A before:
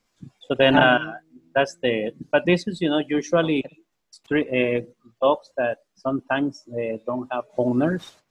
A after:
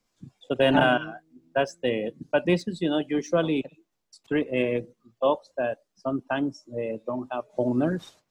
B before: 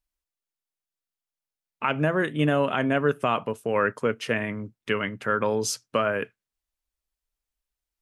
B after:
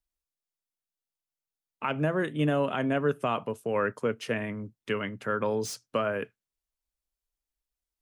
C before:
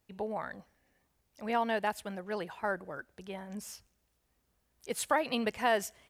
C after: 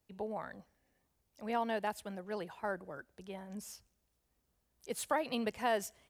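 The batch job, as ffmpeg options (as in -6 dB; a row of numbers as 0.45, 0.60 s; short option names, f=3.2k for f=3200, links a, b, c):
-filter_complex "[0:a]equalizer=f=1.9k:t=o:w=1.8:g=-3.5,acrossover=split=150|3300[a][b][c];[c]asoftclip=type=hard:threshold=-33dB[d];[a][b][d]amix=inputs=3:normalize=0,volume=-3dB"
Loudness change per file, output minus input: -4.0, -4.0, -4.0 LU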